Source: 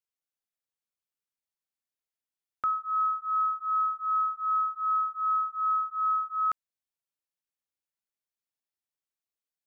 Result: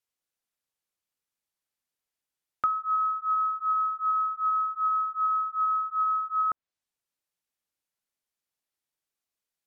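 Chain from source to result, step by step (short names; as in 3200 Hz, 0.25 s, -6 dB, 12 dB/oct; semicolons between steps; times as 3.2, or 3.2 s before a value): treble ducked by the level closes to 1100 Hz, closed at -25 dBFS; gain +4.5 dB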